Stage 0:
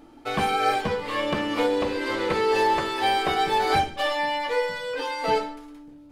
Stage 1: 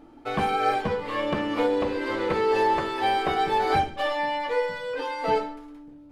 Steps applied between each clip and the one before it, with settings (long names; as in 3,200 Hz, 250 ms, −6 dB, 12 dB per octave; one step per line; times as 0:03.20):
high-shelf EQ 2,900 Hz −9 dB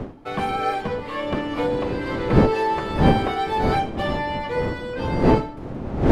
wind on the microphone 340 Hz −24 dBFS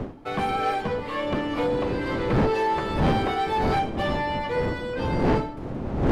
soft clipping −16.5 dBFS, distortion −9 dB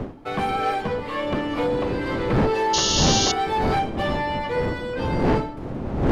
sound drawn into the spectrogram noise, 0:02.73–0:03.32, 2,700–6,900 Hz −24 dBFS
level +1.5 dB